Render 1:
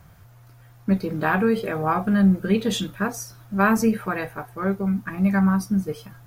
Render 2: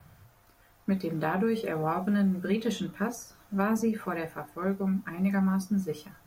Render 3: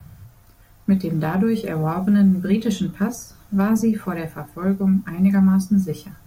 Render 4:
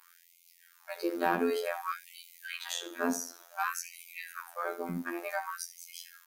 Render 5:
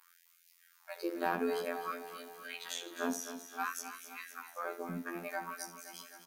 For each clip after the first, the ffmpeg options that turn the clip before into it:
ffmpeg -i in.wav -filter_complex "[0:a]bandreject=frequency=60:width_type=h:width=6,bandreject=frequency=120:width_type=h:width=6,bandreject=frequency=180:width_type=h:width=6,bandreject=frequency=240:width_type=h:width=6,bandreject=frequency=300:width_type=h:width=6,adynamicequalizer=threshold=0.002:dfrequency=6400:dqfactor=5.5:tfrequency=6400:tqfactor=5.5:attack=5:release=100:ratio=0.375:range=2.5:mode=boostabove:tftype=bell,acrossover=split=87|1000|2100[link_01][link_02][link_03][link_04];[link_01]acompressor=threshold=-58dB:ratio=4[link_05];[link_02]acompressor=threshold=-20dB:ratio=4[link_06];[link_03]acompressor=threshold=-40dB:ratio=4[link_07];[link_04]acompressor=threshold=-39dB:ratio=4[link_08];[link_05][link_06][link_07][link_08]amix=inputs=4:normalize=0,volume=-3.5dB" out.wav
ffmpeg -i in.wav -filter_complex "[0:a]acrossover=split=420|1500|4300[link_01][link_02][link_03][link_04];[link_03]aeval=exprs='clip(val(0),-1,0.0178)':channel_layout=same[link_05];[link_01][link_02][link_05][link_04]amix=inputs=4:normalize=0,bass=frequency=250:gain=11,treble=frequency=4000:gain=5,volume=3dB" out.wav
ffmpeg -i in.wav -af "aecho=1:1:74|148|222:0.188|0.0678|0.0244,afftfilt=real='hypot(re,im)*cos(PI*b)':imag='0':win_size=2048:overlap=0.75,afftfilt=real='re*gte(b*sr/1024,210*pow(2100/210,0.5+0.5*sin(2*PI*0.55*pts/sr)))':imag='im*gte(b*sr/1024,210*pow(2100/210,0.5+0.5*sin(2*PI*0.55*pts/sr)))':win_size=1024:overlap=0.75,volume=1dB" out.wav
ffmpeg -i in.wav -af "aecho=1:1:260|520|780|1040|1300|1560|1820:0.282|0.166|0.0981|0.0579|0.0342|0.0201|0.0119,volume=-4.5dB" out.wav

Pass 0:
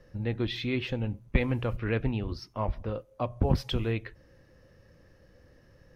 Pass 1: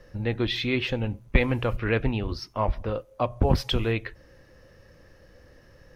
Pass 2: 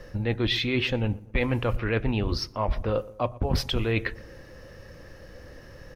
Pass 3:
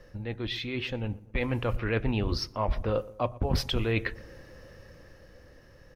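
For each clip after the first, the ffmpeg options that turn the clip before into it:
ffmpeg -i in.wav -af "equalizer=frequency=150:width=0.48:gain=-5,volume=7dB" out.wav
ffmpeg -i in.wav -filter_complex "[0:a]areverse,acompressor=threshold=-30dB:ratio=6,areverse,asplit=2[link_01][link_02];[link_02]adelay=119,lowpass=frequency=1300:poles=1,volume=-19dB,asplit=2[link_03][link_04];[link_04]adelay=119,lowpass=frequency=1300:poles=1,volume=0.5,asplit=2[link_05][link_06];[link_06]adelay=119,lowpass=frequency=1300:poles=1,volume=0.5,asplit=2[link_07][link_08];[link_08]adelay=119,lowpass=frequency=1300:poles=1,volume=0.5[link_09];[link_01][link_03][link_05][link_07][link_09]amix=inputs=5:normalize=0,volume=7.5dB" out.wav
ffmpeg -i in.wav -af "dynaudnorm=framelen=250:gausssize=11:maxgain=7dB,volume=-8.5dB" out.wav

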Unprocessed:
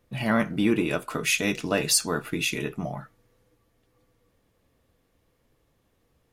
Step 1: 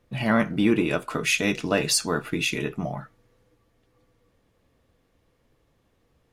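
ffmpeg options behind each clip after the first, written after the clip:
ffmpeg -i in.wav -af "highshelf=frequency=9800:gain=-10,volume=2dB" out.wav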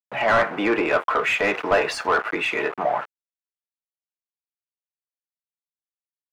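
ffmpeg -i in.wav -filter_complex "[0:a]aeval=exprs='val(0)*gte(abs(val(0)),0.0119)':channel_layout=same,acrossover=split=460 2300:gain=0.1 1 0.126[link_01][link_02][link_03];[link_01][link_02][link_03]amix=inputs=3:normalize=0,asplit=2[link_04][link_05];[link_05]highpass=frequency=720:poles=1,volume=21dB,asoftclip=type=tanh:threshold=-11.5dB[link_06];[link_04][link_06]amix=inputs=2:normalize=0,lowpass=frequency=1400:poles=1,volume=-6dB,volume=4dB" out.wav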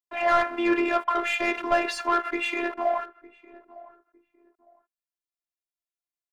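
ffmpeg -i in.wav -filter_complex "[0:a]afftfilt=real='hypot(re,im)*cos(PI*b)':imag='0':win_size=512:overlap=0.75,asplit=2[link_01][link_02];[link_02]adelay=907,lowpass=frequency=800:poles=1,volume=-18dB,asplit=2[link_03][link_04];[link_04]adelay=907,lowpass=frequency=800:poles=1,volume=0.28[link_05];[link_01][link_03][link_05]amix=inputs=3:normalize=0" out.wav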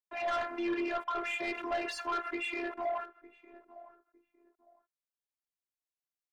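ffmpeg -i in.wav -af "asoftclip=type=tanh:threshold=-21.5dB,volume=-6dB" out.wav

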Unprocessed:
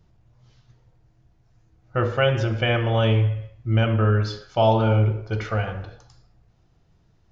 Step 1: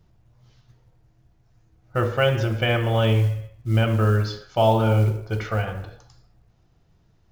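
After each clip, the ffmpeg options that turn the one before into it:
ffmpeg -i in.wav -af "acrusher=bits=8:mode=log:mix=0:aa=0.000001" out.wav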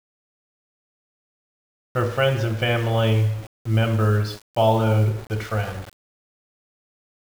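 ffmpeg -i in.wav -af "aeval=exprs='val(0)*gte(abs(val(0)),0.0178)':channel_layout=same" out.wav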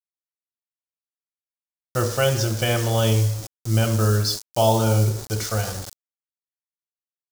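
ffmpeg -i in.wav -af "highshelf=frequency=3800:width_type=q:width=1.5:gain=13.5" out.wav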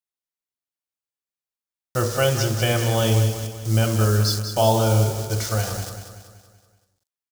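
ffmpeg -i in.wav -af "aecho=1:1:190|380|570|760|950|1140:0.355|0.174|0.0852|0.0417|0.0205|0.01" out.wav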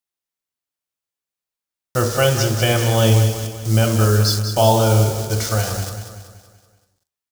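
ffmpeg -i in.wav -af "flanger=delay=8.9:depth=5.3:regen=83:speed=0.66:shape=triangular,volume=8.5dB" out.wav

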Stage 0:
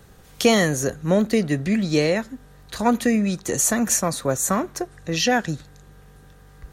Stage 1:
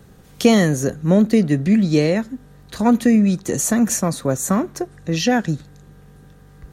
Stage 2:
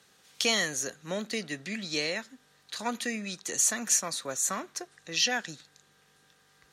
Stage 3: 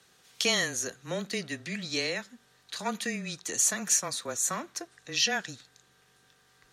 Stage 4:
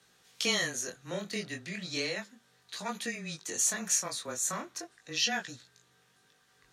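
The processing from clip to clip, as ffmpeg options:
ffmpeg -i in.wav -af "equalizer=frequency=200:width=0.61:gain=8,volume=-1.5dB" out.wav
ffmpeg -i in.wav -af "bandpass=frequency=4300:width_type=q:width=0.72:csg=0" out.wav
ffmpeg -i in.wav -af "afreqshift=-19" out.wav
ffmpeg -i in.wav -af "flanger=delay=16.5:depth=7.5:speed=0.35" out.wav

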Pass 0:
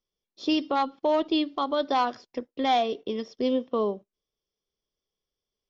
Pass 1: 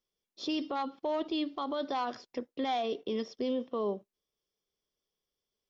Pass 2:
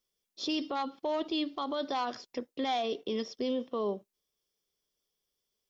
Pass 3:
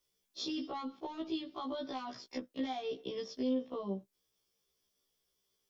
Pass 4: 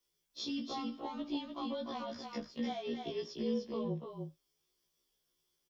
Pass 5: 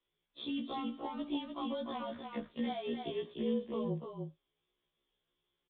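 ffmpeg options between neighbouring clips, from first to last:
ffmpeg -i in.wav -af "lowshelf=frequency=81:gain=-7,acontrast=30,alimiter=limit=-19.5dB:level=0:latency=1:release=31,volume=-5.5dB" out.wav
ffmpeg -i in.wav -af "highshelf=frequency=3700:gain=7" out.wav
ffmpeg -i in.wav -filter_complex "[0:a]acrossover=split=200[link_01][link_02];[link_02]acompressor=threshold=-42dB:ratio=6[link_03];[link_01][link_03]amix=inputs=2:normalize=0,afftfilt=real='re*1.73*eq(mod(b,3),0)':imag='im*1.73*eq(mod(b,3),0)':win_size=2048:overlap=0.75,volume=5.5dB" out.wav
ffmpeg -i in.wav -filter_complex "[0:a]afreqshift=-32,asplit=2[link_01][link_02];[link_02]adelay=25,volume=-13dB[link_03];[link_01][link_03]amix=inputs=2:normalize=0,asplit=2[link_04][link_05];[link_05]aecho=0:1:298:0.562[link_06];[link_04][link_06]amix=inputs=2:normalize=0,volume=-1.5dB" out.wav
ffmpeg -i in.wav -af "aresample=8000,aresample=44100,volume=1dB" out.wav

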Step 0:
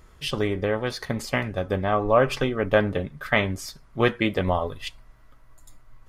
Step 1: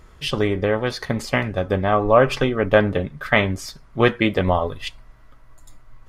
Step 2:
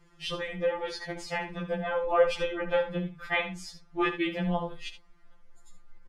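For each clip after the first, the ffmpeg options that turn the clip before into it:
ffmpeg -i in.wav -af "highshelf=frequency=8300:gain=-6.5,volume=4.5dB" out.wav
ffmpeg -i in.wav -af "lowpass=9800,aecho=1:1:72:0.282,afftfilt=real='re*2.83*eq(mod(b,8),0)':imag='im*2.83*eq(mod(b,8),0)':win_size=2048:overlap=0.75,volume=-7dB" out.wav

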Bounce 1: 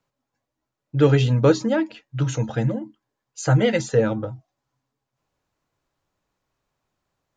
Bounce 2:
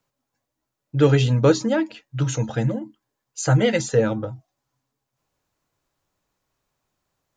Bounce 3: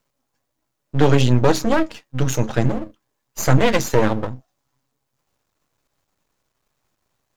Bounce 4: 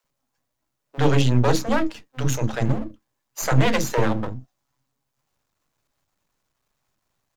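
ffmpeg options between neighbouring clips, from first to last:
ffmpeg -i in.wav -af "highshelf=frequency=6300:gain=8" out.wav
ffmpeg -i in.wav -af "aeval=exprs='max(val(0),0)':channel_layout=same,alimiter=level_in=8.5dB:limit=-1dB:release=50:level=0:latency=1,volume=-1dB" out.wav
ffmpeg -i in.wav -filter_complex "[0:a]acrossover=split=430[link_01][link_02];[link_01]adelay=40[link_03];[link_03][link_02]amix=inputs=2:normalize=0,volume=-2.5dB" out.wav

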